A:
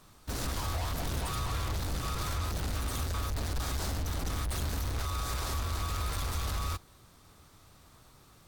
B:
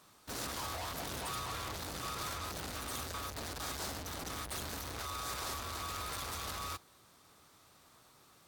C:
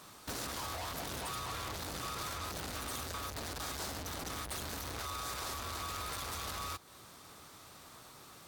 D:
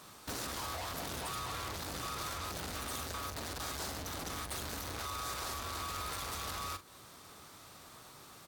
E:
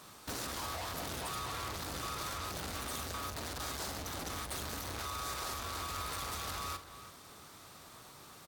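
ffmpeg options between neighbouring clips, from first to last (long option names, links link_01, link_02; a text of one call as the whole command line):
ffmpeg -i in.wav -af "highpass=frequency=320:poles=1,volume=-2dB" out.wav
ffmpeg -i in.wav -af "acompressor=threshold=-49dB:ratio=3,volume=8.5dB" out.wav
ffmpeg -i in.wav -filter_complex "[0:a]asplit=2[link_01][link_02];[link_02]adelay=43,volume=-12dB[link_03];[link_01][link_03]amix=inputs=2:normalize=0" out.wav
ffmpeg -i in.wav -filter_complex "[0:a]asplit=2[link_01][link_02];[link_02]adelay=332.4,volume=-12dB,highshelf=frequency=4000:gain=-7.48[link_03];[link_01][link_03]amix=inputs=2:normalize=0" out.wav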